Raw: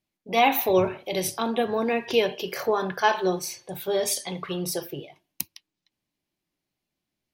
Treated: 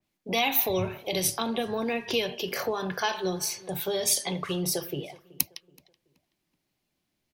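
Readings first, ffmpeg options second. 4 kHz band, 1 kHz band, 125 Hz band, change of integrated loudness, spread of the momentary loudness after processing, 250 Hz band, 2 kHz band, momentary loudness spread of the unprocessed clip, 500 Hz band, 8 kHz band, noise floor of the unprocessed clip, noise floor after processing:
+1.0 dB, −7.0 dB, +0.5 dB, −2.5 dB, 7 LU, −3.0 dB, −3.0 dB, 13 LU, −5.5 dB, +3.0 dB, −85 dBFS, −80 dBFS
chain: -filter_complex "[0:a]acrossover=split=140|3000[link_01][link_02][link_03];[link_02]acompressor=threshold=-35dB:ratio=3[link_04];[link_01][link_04][link_03]amix=inputs=3:normalize=0,asplit=2[link_05][link_06];[link_06]adelay=377,lowpass=frequency=2400:poles=1,volume=-21dB,asplit=2[link_07][link_08];[link_08]adelay=377,lowpass=frequency=2400:poles=1,volume=0.39,asplit=2[link_09][link_10];[link_10]adelay=377,lowpass=frequency=2400:poles=1,volume=0.39[link_11];[link_05][link_07][link_09][link_11]amix=inputs=4:normalize=0,adynamicequalizer=threshold=0.00562:dfrequency=2900:dqfactor=0.7:tfrequency=2900:tqfactor=0.7:attack=5:release=100:ratio=0.375:range=1.5:mode=cutabove:tftype=highshelf,volume=4.5dB"

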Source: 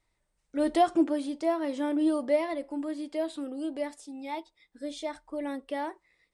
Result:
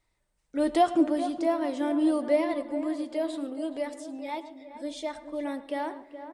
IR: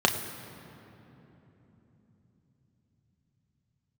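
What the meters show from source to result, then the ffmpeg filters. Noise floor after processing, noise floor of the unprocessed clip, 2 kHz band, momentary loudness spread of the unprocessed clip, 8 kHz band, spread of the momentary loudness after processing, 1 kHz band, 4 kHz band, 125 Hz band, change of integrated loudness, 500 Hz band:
−75 dBFS, −78 dBFS, +1.5 dB, 13 LU, +1.0 dB, 13 LU, +1.5 dB, +1.0 dB, can't be measured, +1.5 dB, +1.5 dB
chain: -filter_complex "[0:a]asplit=2[link_01][link_02];[link_02]adelay=422,lowpass=frequency=1500:poles=1,volume=-10.5dB,asplit=2[link_03][link_04];[link_04]adelay=422,lowpass=frequency=1500:poles=1,volume=0.5,asplit=2[link_05][link_06];[link_06]adelay=422,lowpass=frequency=1500:poles=1,volume=0.5,asplit=2[link_07][link_08];[link_08]adelay=422,lowpass=frequency=1500:poles=1,volume=0.5,asplit=2[link_09][link_10];[link_10]adelay=422,lowpass=frequency=1500:poles=1,volume=0.5[link_11];[link_01][link_03][link_05][link_07][link_09][link_11]amix=inputs=6:normalize=0,asplit=2[link_12][link_13];[1:a]atrim=start_sample=2205,adelay=110[link_14];[link_13][link_14]afir=irnorm=-1:irlink=0,volume=-29dB[link_15];[link_12][link_15]amix=inputs=2:normalize=0,volume=1dB"

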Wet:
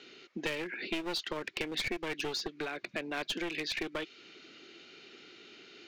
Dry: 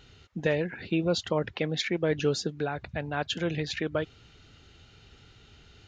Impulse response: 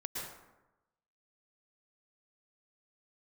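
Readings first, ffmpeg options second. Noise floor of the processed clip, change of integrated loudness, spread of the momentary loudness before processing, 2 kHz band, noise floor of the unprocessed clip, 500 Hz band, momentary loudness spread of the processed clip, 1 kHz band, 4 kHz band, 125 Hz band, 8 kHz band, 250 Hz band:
−60 dBFS, −6.0 dB, 6 LU, −1.5 dB, −57 dBFS, −10.0 dB, 18 LU, −5.5 dB, −1.5 dB, −18.5 dB, −4.0 dB, −8.5 dB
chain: -filter_complex "[0:a]highpass=frequency=230:width=0.5412,highpass=frequency=230:width=1.3066,equalizer=frequency=350:width_type=q:width=4:gain=9,equalizer=frequency=860:width_type=q:width=4:gain=-7,equalizer=frequency=2300:width_type=q:width=4:gain=7,equalizer=frequency=4500:width_type=q:width=4:gain=3,lowpass=frequency=6700:width=0.5412,lowpass=frequency=6700:width=1.3066,aeval=exprs='clip(val(0),-1,0.0376)':channel_layout=same,acrossover=split=1100|2300|4800[link_01][link_02][link_03][link_04];[link_01]acompressor=threshold=-40dB:ratio=4[link_05];[link_02]acompressor=threshold=-46dB:ratio=4[link_06];[link_03]acompressor=threshold=-41dB:ratio=4[link_07];[link_04]acompressor=threshold=-46dB:ratio=4[link_08];[link_05][link_06][link_07][link_08]amix=inputs=4:normalize=0,volume=2.5dB"

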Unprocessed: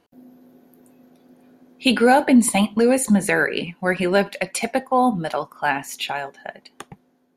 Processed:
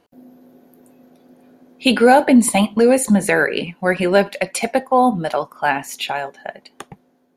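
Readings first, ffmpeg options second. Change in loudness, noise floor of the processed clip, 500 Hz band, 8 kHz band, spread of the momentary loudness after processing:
+3.0 dB, −60 dBFS, +4.5 dB, +2.0 dB, 12 LU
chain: -af "equalizer=frequency=580:width=1.5:gain=3,volume=2dB"

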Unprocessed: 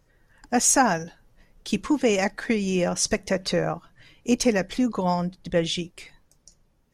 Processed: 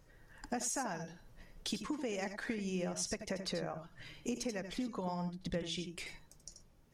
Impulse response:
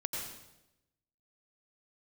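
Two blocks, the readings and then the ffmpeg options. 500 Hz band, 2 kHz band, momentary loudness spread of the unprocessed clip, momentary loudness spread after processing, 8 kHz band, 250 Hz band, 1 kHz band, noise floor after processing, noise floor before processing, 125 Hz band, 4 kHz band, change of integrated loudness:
−16.0 dB, −15.0 dB, 10 LU, 15 LU, −16.0 dB, −15.0 dB, −17.0 dB, −64 dBFS, −64 dBFS, −13.0 dB, −12.5 dB, −16.0 dB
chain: -filter_complex "[0:a]acompressor=threshold=-37dB:ratio=6[link_01];[1:a]atrim=start_sample=2205,atrim=end_sample=3969[link_02];[link_01][link_02]afir=irnorm=-1:irlink=0,volume=1dB"

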